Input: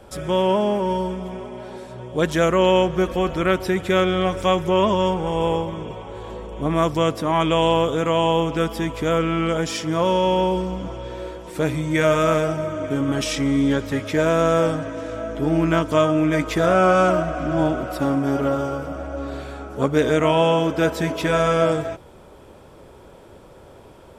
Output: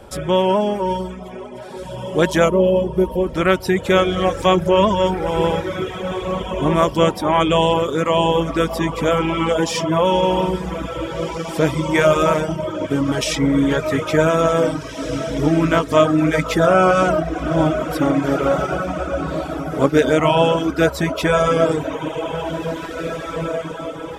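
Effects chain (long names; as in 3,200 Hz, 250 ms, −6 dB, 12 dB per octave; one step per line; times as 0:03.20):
gain on a spectral selection 0:02.49–0:03.35, 610–8,900 Hz −14 dB
feedback delay with all-pass diffusion 1,949 ms, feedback 43%, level −8 dB
reverb reduction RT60 1 s
level +4.5 dB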